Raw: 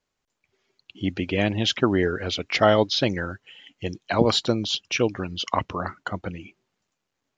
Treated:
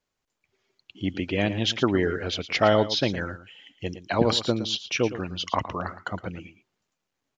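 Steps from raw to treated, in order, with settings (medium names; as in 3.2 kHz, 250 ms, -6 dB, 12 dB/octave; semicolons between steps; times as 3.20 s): delay 113 ms -13 dB; trim -2 dB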